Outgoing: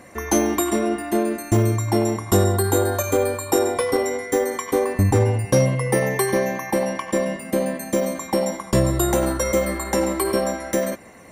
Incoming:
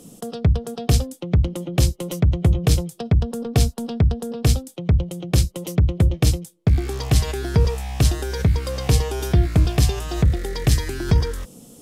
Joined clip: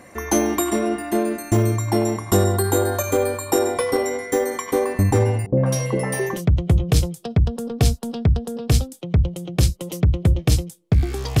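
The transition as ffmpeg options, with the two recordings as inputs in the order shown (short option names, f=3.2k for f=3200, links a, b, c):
-filter_complex "[0:a]asettb=1/sr,asplit=3[a][b][c];[a]atrim=end=5.464[d];[b]atrim=start=5.46:end=6.42,asetpts=PTS-STARTPTS,afade=t=in:d=0.004:c=qsin,afade=t=out:st=0.956:d=0.004:c=qsin,acrossover=split=600|1800[e][f][g];[f]adelay=110[h];[g]adelay=200[i];[e][h][i]amix=inputs=3:normalize=0,atrim=end_sample=42336[j];[c]atrim=start=6.416[k];[d][j]acrossfade=d=0.004:c1=hsin:c2=qsin[l];[l][k]acrossfade=d=0.004:c1=qsin:c2=hsin,apad=whole_dur=11.4,atrim=end=11.4,atrim=end=6.42,asetpts=PTS-STARTPTS[m];[1:a]atrim=start=2.01:end=7.15,asetpts=PTS-STARTPTS[n];[m][n]acrossfade=d=0.16:c1=tri:c2=tri"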